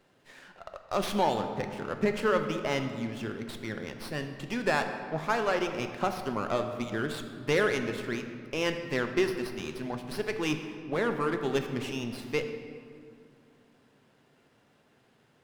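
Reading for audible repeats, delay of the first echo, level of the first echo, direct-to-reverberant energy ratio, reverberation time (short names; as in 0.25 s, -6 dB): none, none, none, 6.0 dB, 2.2 s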